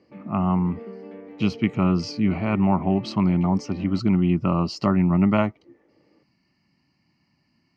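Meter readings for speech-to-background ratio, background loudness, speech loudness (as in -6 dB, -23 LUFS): 18.5 dB, -41.0 LUFS, -22.5 LUFS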